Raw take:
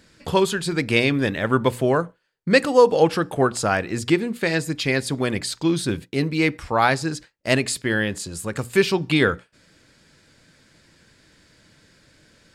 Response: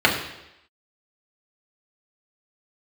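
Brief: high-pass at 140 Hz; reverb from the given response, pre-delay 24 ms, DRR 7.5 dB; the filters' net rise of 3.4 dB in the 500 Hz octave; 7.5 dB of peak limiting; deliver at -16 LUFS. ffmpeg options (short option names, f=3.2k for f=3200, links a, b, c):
-filter_complex "[0:a]highpass=140,equalizer=f=500:t=o:g=4,alimiter=limit=-7.5dB:level=0:latency=1,asplit=2[a][b];[1:a]atrim=start_sample=2205,adelay=24[c];[b][c]afir=irnorm=-1:irlink=0,volume=-29dB[d];[a][d]amix=inputs=2:normalize=0,volume=5dB"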